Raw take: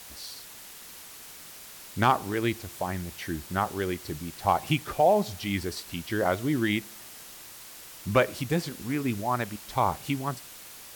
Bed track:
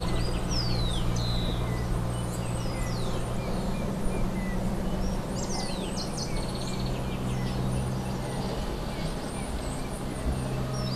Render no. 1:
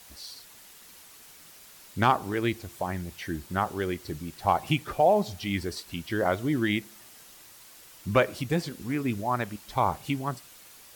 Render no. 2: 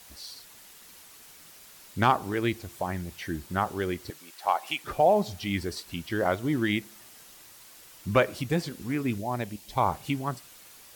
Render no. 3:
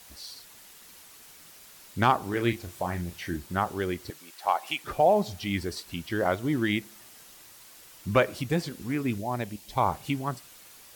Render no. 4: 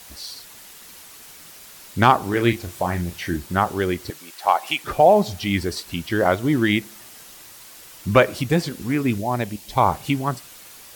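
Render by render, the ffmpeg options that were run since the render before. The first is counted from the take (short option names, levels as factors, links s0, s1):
-af "afftdn=nr=6:nf=-46"
-filter_complex "[0:a]asettb=1/sr,asplit=3[s0][s1][s2];[s0]atrim=end=4.104[s3];[s1]atrim=start=4.1:end=4.84,asetpts=PTS-STARTPTS,afade=t=in:d=0.004:c=qsin,afade=t=out:st=0.736:d=0.004:c=qsin,highpass=660[s4];[s2]atrim=start=4.836[s5];[s3][s4]acrossfade=d=0.004:c1=hsin:c2=qsin[s6];[s6][s5]acrossfade=d=0.004:c1=qsin:c2=hsin,asettb=1/sr,asplit=3[s7][s8][s9];[s7]atrim=end=6.094[s10];[s8]atrim=start=6.09:end=6.73,asetpts=PTS-STARTPTS,afade=t=in:d=0.004:c=qsin,afade=t=out:st=0.636:d=0.004:c=qsin,aeval=exprs='sgn(val(0))*max(abs(val(0))-0.00282,0)':c=same[s11];[s9]atrim=start=6.726[s12];[s10][s11]acrossfade=d=0.004:c1=hsin:c2=qsin[s13];[s13][s12]acrossfade=d=0.004:c1=qsin:c2=hsin,asettb=1/sr,asplit=3[s14][s15][s16];[s14]atrim=end=9.184[s17];[s15]atrim=start=9.18:end=9.77,asetpts=PTS-STARTPTS,afade=t=in:d=0.004:c=qsin,afade=t=out:st=0.586:d=0.004:c=qsin,equalizer=f=1300:t=o:w=0.82:g=-11.5[s18];[s16]atrim=start=9.766[s19];[s17][s18]acrossfade=d=0.004:c1=hsin:c2=qsin[s20];[s20][s19]acrossfade=d=0.004:c1=qsin:c2=hsin"
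-filter_complex "[0:a]asettb=1/sr,asplit=3[s0][s1][s2];[s0]atrim=end=2.304[s3];[s1]atrim=start=2.3:end=3.37,asetpts=PTS-STARTPTS,afade=t=in:d=0.004:c=qsin,afade=t=out:st=1.066:d=0.004:c=qsin,asplit=2[s4][s5];[s5]adelay=34,volume=0.398[s6];[s4][s6]amix=inputs=2:normalize=0,atrim=end_sample=47187[s7];[s2]atrim=start=3.366[s8];[s3][s7]acrossfade=d=0.004:c1=hsin:c2=qsin[s9];[s9][s8]acrossfade=d=0.004:c1=qsin:c2=hsin"
-af "volume=2.37"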